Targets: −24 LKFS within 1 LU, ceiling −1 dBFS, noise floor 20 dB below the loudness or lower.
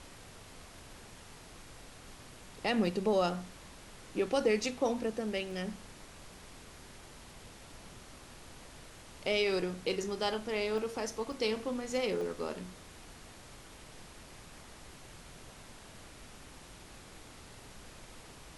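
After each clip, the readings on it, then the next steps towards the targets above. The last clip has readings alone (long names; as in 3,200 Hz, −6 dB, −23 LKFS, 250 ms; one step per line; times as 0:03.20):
number of dropouts 5; longest dropout 1.8 ms; background noise floor −53 dBFS; target noise floor −54 dBFS; integrated loudness −33.5 LKFS; sample peak −17.5 dBFS; target loudness −24.0 LKFS
→ repair the gap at 0:02.87/0:05.51/0:10.78/0:11.32/0:12.21, 1.8 ms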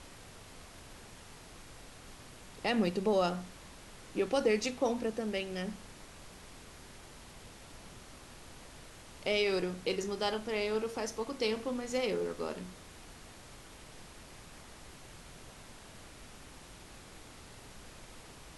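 number of dropouts 0; background noise floor −53 dBFS; target noise floor −54 dBFS
→ noise reduction from a noise print 6 dB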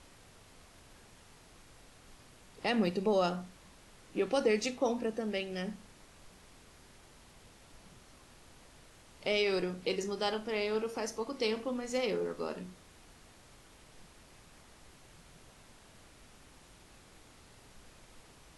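background noise floor −59 dBFS; integrated loudness −33.5 LKFS; sample peak −17.5 dBFS; target loudness −24.0 LKFS
→ level +9.5 dB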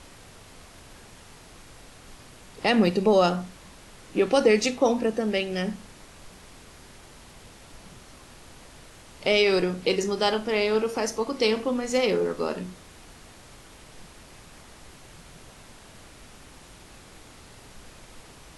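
integrated loudness −24.0 LKFS; sample peak −8.0 dBFS; background noise floor −49 dBFS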